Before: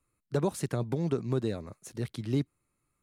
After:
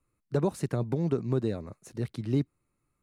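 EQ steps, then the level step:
spectral tilt −1.5 dB per octave
low-shelf EQ 130 Hz −5 dB
notch filter 3,300 Hz, Q 16
0.0 dB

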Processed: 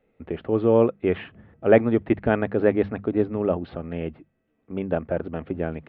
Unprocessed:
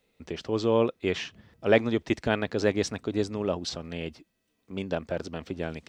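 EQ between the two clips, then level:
Gaussian smoothing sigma 4.2 samples
mains-hum notches 50/100/150/200 Hz
notch filter 1,000 Hz, Q 11
+6.0 dB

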